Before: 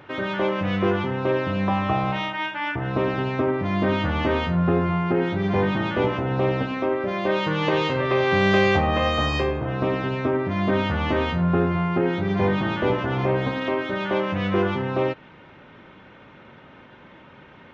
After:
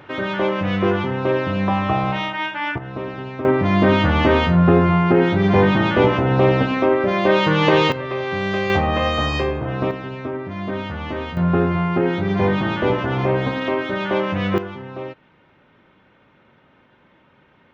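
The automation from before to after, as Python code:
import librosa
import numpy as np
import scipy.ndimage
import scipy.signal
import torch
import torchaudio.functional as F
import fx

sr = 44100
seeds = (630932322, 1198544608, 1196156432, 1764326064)

y = fx.gain(x, sr, db=fx.steps((0.0, 3.0), (2.78, -5.5), (3.45, 7.0), (7.92, -4.0), (8.7, 2.0), (9.91, -4.5), (11.37, 3.0), (14.58, -8.0)))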